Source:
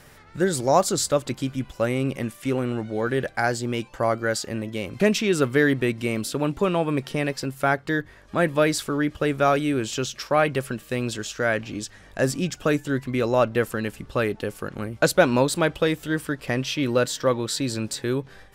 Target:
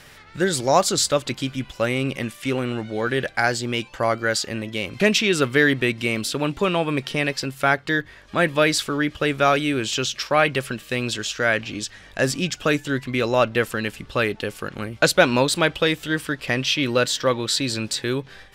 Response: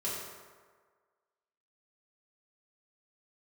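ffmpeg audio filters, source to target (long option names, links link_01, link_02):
-af "equalizer=frequency=3200:width_type=o:width=2.1:gain=8.5"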